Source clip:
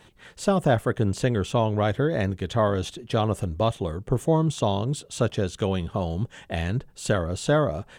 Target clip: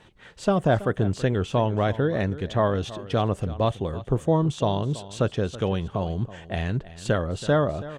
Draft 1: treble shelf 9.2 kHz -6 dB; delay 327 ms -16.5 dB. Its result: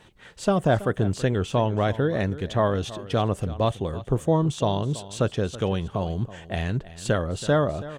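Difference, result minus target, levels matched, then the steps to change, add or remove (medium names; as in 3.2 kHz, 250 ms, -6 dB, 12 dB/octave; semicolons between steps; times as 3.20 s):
8 kHz band +4.0 dB
change: treble shelf 9.2 kHz -16.5 dB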